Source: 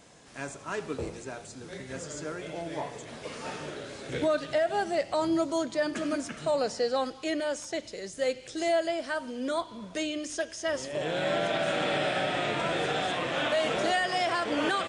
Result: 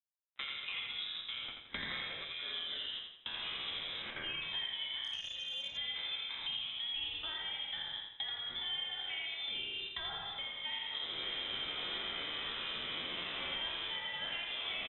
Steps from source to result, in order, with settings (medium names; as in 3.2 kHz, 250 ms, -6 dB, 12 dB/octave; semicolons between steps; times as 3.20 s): spectral sustain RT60 1.16 s; recorder AGC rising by 7.9 dB/s; 4.02–4.42 s: high-pass 770 Hz 24 dB/octave; gate with hold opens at -23 dBFS; 1.48–2.25 s: peaking EQ 2.9 kHz +11.5 dB 2.8 oct; compression 10:1, threshold -35 dBFS, peak gain reduction 15 dB; crossover distortion -54.5 dBFS; flange 1.8 Hz, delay 0.8 ms, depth 1.3 ms, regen -67%; feedback delay 84 ms, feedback 41%, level -5 dB; frequency inversion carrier 3.8 kHz; 5.04–5.77 s: transformer saturation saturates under 1.6 kHz; trim +2 dB